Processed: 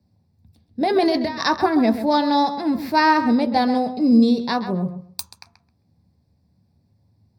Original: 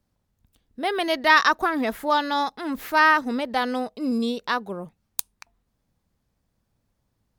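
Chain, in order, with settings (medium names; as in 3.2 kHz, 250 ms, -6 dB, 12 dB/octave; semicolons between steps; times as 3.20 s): 0.81–1.44 s: compressor with a negative ratio -26 dBFS, ratio -1; filtered feedback delay 132 ms, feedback 18%, low-pass 3.9 kHz, level -10.5 dB; reverberation RT60 0.35 s, pre-delay 3 ms, DRR 8 dB; trim -4.5 dB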